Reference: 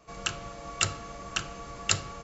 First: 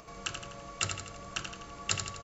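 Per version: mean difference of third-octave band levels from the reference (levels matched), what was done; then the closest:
3.0 dB: upward compression, threshold −38 dBFS
on a send: repeating echo 83 ms, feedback 51%, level −6.5 dB
on the sum: level −5.5 dB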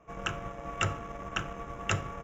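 5.0 dB: in parallel at −8 dB: bit-depth reduction 6 bits, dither none
on the sum: moving average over 10 samples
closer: first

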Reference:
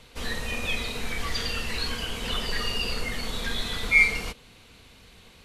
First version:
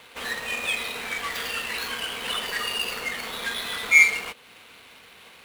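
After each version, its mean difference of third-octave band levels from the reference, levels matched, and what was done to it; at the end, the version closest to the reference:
5.0 dB: running median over 9 samples
high-pass filter 1,100 Hz 6 dB per octave
in parallel at −3 dB: downward compressor, threshold −47 dBFS, peak gain reduction 27.5 dB
on the sum: level +5.5 dB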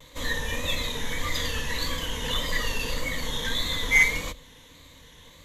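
3.0 dB: variable-slope delta modulation 64 kbit/s
EQ curve with evenly spaced ripples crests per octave 1.1, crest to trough 11 dB
pitch vibrato 1.7 Hz 74 cents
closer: second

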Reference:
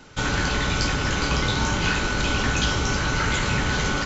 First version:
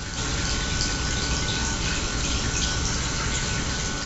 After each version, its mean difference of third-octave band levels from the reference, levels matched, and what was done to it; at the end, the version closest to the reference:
3.0 dB: bass and treble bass +3 dB, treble +12 dB
on a send: backwards echo 316 ms −5 dB
on the sum: level −7 dB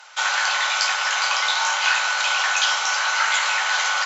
13.5 dB: Butterworth high-pass 700 Hz 36 dB per octave
harmonic generator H 4 −43 dB, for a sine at −11 dBFS
level +5.5 dB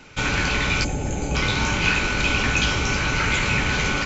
2.0 dB: gain on a spectral selection 0:00.84–0:01.35, 890–6,100 Hz −16 dB
parametric band 2,400 Hz +11 dB 0.33 octaves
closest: third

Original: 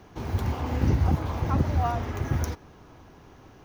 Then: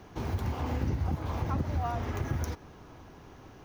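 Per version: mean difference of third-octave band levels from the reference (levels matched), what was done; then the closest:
3.0 dB: downward compressor 3 to 1, threshold −29 dBFS, peak gain reduction 9 dB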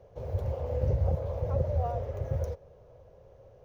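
8.0 dB: drawn EQ curve 120 Hz 0 dB, 300 Hz −18 dB, 540 Hz +14 dB, 770 Hz −6 dB, 1,300 Hz −13 dB
level −4 dB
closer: first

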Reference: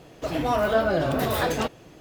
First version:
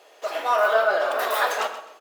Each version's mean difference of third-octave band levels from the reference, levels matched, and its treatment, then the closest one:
8.5 dB: high-pass filter 510 Hz 24 dB per octave
dynamic equaliser 1,300 Hz, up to +7 dB, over −40 dBFS, Q 1.4
on a send: repeating echo 129 ms, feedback 28%, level −13 dB
on the sum: rectangular room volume 2,400 cubic metres, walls furnished, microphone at 1.3 metres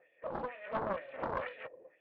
11.5 dB: soft clipping −21.5 dBFS, distortion −12 dB
LFO wah 2.1 Hz 400–3,400 Hz, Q 2.2
formant resonators in series e
highs frequency-modulated by the lows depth 0.92 ms
level +7 dB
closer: first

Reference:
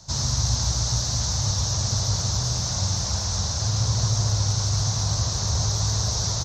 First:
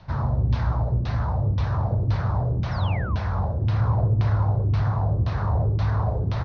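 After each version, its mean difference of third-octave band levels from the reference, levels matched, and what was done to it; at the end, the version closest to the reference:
11.0 dB: auto-filter low-pass saw down 1.9 Hz 270–2,900 Hz
sound drawn into the spectrogram fall, 0:02.71–0:03.16, 950–5,800 Hz −38 dBFS
in parallel at −5 dB: soft clipping −25.5 dBFS, distortion −11 dB
on the sum: high-frequency loss of the air 290 metres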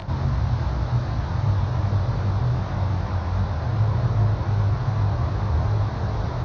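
8.0 dB: low-pass filter 2,400 Hz 24 dB per octave
parametric band 320 Hz +6.5 dB 0.51 octaves
upward compression, threshold −25 dBFS
chorus effect 2.6 Hz, delay 20 ms, depth 4.4 ms
level +6 dB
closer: second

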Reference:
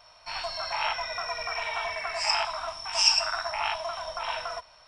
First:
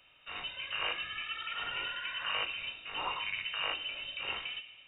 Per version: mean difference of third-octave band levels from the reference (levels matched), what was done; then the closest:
10.0 dB: feedback delay network reverb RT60 1.6 s, high-frequency decay 0.25×, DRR 10 dB
voice inversion scrambler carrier 3,700 Hz
level −6 dB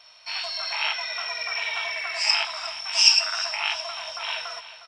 5.0 dB: meter weighting curve D
on a send: repeating echo 360 ms, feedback 46%, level −14.5 dB
on the sum: level −4 dB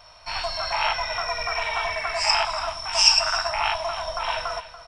1.0 dB: low-shelf EQ 110 Hz +8.5 dB
on a send: single-tap delay 286 ms −14.5 dB
on the sum: level +5 dB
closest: third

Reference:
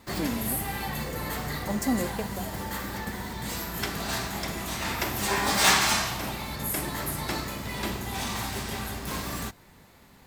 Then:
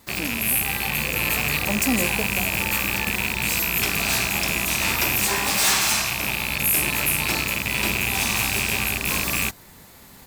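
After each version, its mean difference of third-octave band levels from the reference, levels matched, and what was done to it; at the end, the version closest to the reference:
4.0 dB: loose part that buzzes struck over −38 dBFS, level −13 dBFS
high-shelf EQ 5,700 Hz +11.5 dB
automatic gain control gain up to 8.5 dB
soft clipping −12.5 dBFS, distortion −11 dB
level −1.5 dB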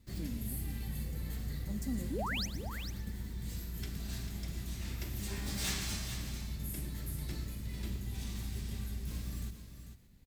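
5.5 dB: guitar amp tone stack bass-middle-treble 10-0-1
sound drawn into the spectrogram rise, 0:02.10–0:02.46, 230–6,600 Hz −44 dBFS
single-tap delay 445 ms −9.5 dB
feedback echo at a low word length 117 ms, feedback 35%, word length 11 bits, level −14.5 dB
level +6.5 dB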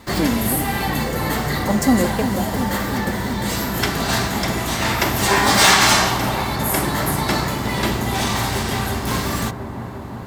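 2.5 dB: high-shelf EQ 9,400 Hz −5 dB
notch filter 2,500 Hz, Q 24
delay with a low-pass on its return 350 ms, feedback 80%, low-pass 1,000 Hz, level −9.5 dB
boost into a limiter +11.5 dB
level −1 dB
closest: third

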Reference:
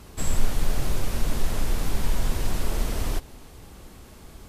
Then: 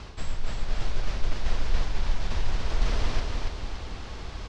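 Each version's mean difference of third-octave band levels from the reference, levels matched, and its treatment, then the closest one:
8.5 dB: low-pass filter 5,500 Hz 24 dB per octave
parametric band 240 Hz −7 dB 2.3 octaves
reversed playback
downward compressor 12 to 1, threshold −29 dBFS, peak gain reduction 18 dB
reversed playback
repeating echo 284 ms, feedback 41%, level −4 dB
level +8.5 dB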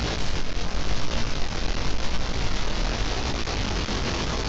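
11.0 dB: linear delta modulator 32 kbit/s, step −19.5 dBFS
downward compressor, threshold −18 dBFS, peak gain reduction 7.5 dB
chorus effect 0.9 Hz, delay 17 ms, depth 6.7 ms
level +3 dB
mu-law 128 kbit/s 16,000 Hz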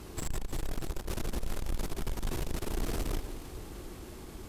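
4.5 dB: parametric band 340 Hz +7.5 dB 0.52 octaves
downward compressor, threshold −17 dBFS, peak gain reduction 6.5 dB
tube saturation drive 28 dB, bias 0.3
delay that swaps between a low-pass and a high-pass 154 ms, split 1,200 Hz, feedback 75%, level −11 dB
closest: third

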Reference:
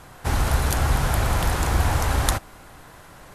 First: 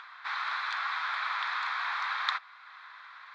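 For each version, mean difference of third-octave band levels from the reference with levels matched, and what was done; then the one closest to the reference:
19.5 dB: elliptic band-pass filter 1,100–3,900 Hz, stop band 60 dB
parametric band 2,900 Hz −12 dB 0.22 octaves
upward compression, threshold −43 dBFS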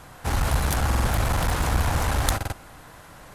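2.0 dB: notch filter 380 Hz, Q 12
asymmetric clip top −22 dBFS
buffer that repeats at 0:00.87/0:02.36, samples 2,048, times 3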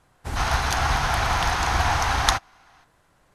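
8.5 dB: gain on a spectral selection 0:00.36–0:02.84, 660–6,700 Hz +10 dB
low-pass filter 11,000 Hz 12 dB per octave
expander for the loud parts 1.5 to 1, over −39 dBFS
level −3 dB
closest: second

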